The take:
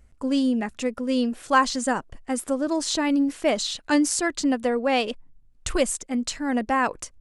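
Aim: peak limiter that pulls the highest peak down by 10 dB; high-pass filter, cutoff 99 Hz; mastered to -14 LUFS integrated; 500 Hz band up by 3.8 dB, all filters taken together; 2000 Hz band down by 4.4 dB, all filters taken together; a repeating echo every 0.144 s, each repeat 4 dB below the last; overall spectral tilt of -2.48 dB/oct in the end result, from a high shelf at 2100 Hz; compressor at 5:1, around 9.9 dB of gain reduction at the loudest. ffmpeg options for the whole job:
-af "highpass=99,equalizer=f=500:t=o:g=4.5,equalizer=f=2k:t=o:g=-8,highshelf=f=2.1k:g=3.5,acompressor=threshold=-25dB:ratio=5,alimiter=limit=-22dB:level=0:latency=1,aecho=1:1:144|288|432|576|720|864|1008|1152|1296:0.631|0.398|0.25|0.158|0.0994|0.0626|0.0394|0.0249|0.0157,volume=15dB"

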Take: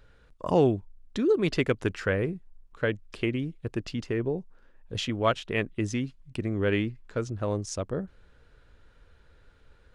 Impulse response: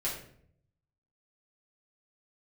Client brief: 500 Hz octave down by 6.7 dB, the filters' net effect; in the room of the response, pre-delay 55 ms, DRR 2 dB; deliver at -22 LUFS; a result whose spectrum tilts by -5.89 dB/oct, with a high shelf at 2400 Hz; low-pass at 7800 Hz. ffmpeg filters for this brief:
-filter_complex "[0:a]lowpass=7.8k,equalizer=f=500:t=o:g=-8.5,highshelf=f=2.4k:g=-3,asplit=2[a][b];[1:a]atrim=start_sample=2205,adelay=55[c];[b][c]afir=irnorm=-1:irlink=0,volume=-6.5dB[d];[a][d]amix=inputs=2:normalize=0,volume=8dB"

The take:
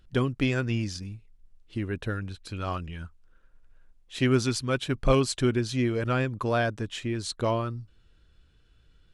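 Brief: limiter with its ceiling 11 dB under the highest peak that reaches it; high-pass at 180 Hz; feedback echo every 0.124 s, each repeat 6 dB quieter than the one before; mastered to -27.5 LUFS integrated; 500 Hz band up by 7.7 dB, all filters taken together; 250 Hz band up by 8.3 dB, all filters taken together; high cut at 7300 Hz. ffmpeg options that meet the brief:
-af "highpass=180,lowpass=7.3k,equalizer=f=250:t=o:g=8.5,equalizer=f=500:t=o:g=7,alimiter=limit=-14dB:level=0:latency=1,aecho=1:1:124|248|372|496|620|744:0.501|0.251|0.125|0.0626|0.0313|0.0157,volume=-2.5dB"

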